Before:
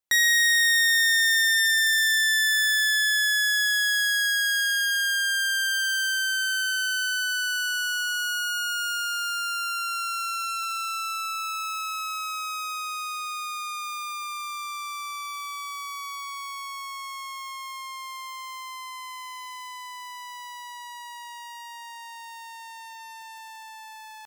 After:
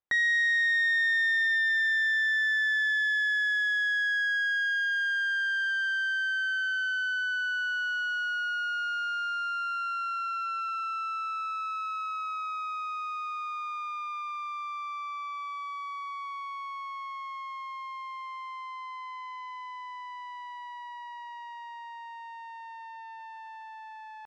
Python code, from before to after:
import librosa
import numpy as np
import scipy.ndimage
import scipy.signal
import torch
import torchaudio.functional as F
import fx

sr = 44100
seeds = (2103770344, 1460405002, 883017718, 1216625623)

y = scipy.signal.sosfilt(scipy.signal.butter(2, 1800.0, 'lowpass', fs=sr, output='sos'), x)